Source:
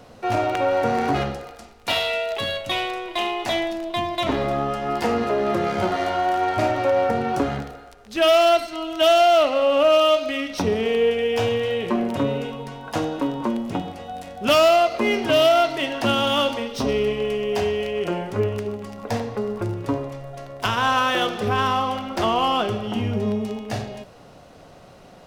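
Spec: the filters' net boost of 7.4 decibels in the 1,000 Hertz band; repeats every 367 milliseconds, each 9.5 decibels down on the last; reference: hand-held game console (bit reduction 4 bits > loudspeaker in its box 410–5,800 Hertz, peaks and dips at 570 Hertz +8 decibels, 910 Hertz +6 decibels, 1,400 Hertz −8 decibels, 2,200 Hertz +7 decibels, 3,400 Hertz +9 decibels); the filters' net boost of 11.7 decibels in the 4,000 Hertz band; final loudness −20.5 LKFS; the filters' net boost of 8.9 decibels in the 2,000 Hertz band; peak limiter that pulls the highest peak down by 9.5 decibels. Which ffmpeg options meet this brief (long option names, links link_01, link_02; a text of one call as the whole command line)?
ffmpeg -i in.wav -af "equalizer=frequency=1000:width_type=o:gain=6.5,equalizer=frequency=2000:width_type=o:gain=4.5,equalizer=frequency=4000:width_type=o:gain=4.5,alimiter=limit=-11dB:level=0:latency=1,aecho=1:1:367|734|1101|1468:0.335|0.111|0.0365|0.012,acrusher=bits=3:mix=0:aa=0.000001,highpass=410,equalizer=frequency=570:width_type=q:width=4:gain=8,equalizer=frequency=910:width_type=q:width=4:gain=6,equalizer=frequency=1400:width_type=q:width=4:gain=-8,equalizer=frequency=2200:width_type=q:width=4:gain=7,equalizer=frequency=3400:width_type=q:width=4:gain=9,lowpass=frequency=5800:width=0.5412,lowpass=frequency=5800:width=1.3066,volume=-4dB" out.wav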